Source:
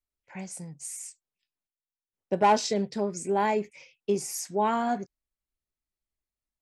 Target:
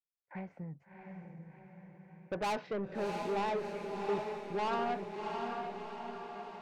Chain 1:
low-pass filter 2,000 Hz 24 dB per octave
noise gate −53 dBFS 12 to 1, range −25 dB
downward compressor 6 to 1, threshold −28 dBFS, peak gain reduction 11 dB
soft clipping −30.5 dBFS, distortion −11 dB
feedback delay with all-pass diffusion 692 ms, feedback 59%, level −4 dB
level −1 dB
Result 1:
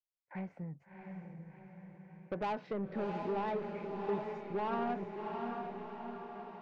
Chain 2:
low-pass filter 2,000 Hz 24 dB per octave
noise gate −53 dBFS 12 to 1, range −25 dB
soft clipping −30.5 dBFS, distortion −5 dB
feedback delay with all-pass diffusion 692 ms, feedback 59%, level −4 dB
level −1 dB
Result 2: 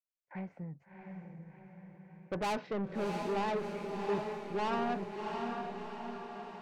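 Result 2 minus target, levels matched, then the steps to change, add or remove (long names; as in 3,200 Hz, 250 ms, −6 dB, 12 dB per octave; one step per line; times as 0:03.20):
250 Hz band +3.0 dB
add after low-pass filter: dynamic equaliser 210 Hz, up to −6 dB, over −39 dBFS, Q 0.94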